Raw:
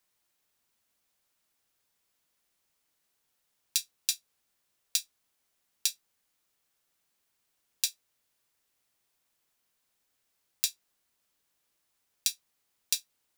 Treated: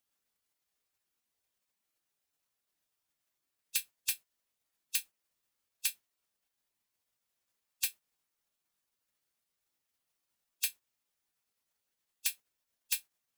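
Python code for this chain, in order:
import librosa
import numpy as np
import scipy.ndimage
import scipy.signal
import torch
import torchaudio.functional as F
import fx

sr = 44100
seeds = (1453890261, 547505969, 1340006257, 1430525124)

y = fx.spec_gate(x, sr, threshold_db=-10, keep='weak')
y = 10.0 ** (-20.5 / 20.0) * np.tanh(y / 10.0 ** (-20.5 / 20.0))
y = y * librosa.db_to_amplitude(4.0)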